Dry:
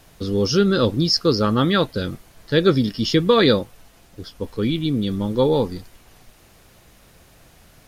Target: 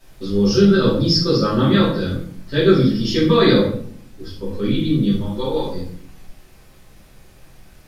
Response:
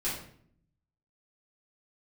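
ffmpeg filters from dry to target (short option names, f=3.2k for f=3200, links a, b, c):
-filter_complex "[0:a]asettb=1/sr,asplit=3[a][b][c];[a]atrim=end=5.164[d];[b]atrim=start=5.16:end=5.7,asetpts=PTS-STARTPTS,afade=t=in:d=0.004:c=qsin,afade=t=out:st=0.536:d=0.004:c=qsin,equalizer=f=160:w=0.45:g=-12.5[e];[c]atrim=start=5.696[f];[d][e]acrossfade=d=0.004:c1=hsin:c2=qsin[g];[g][f]acrossfade=d=0.004:c1=qsin:c2=hsin[h];[1:a]atrim=start_sample=2205[i];[h][i]afir=irnorm=-1:irlink=0,volume=-5dB"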